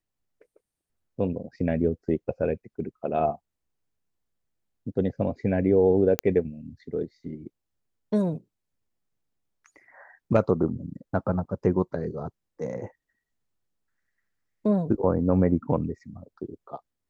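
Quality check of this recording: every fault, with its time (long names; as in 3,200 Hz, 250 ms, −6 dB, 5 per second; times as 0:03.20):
0:06.19: click −7 dBFS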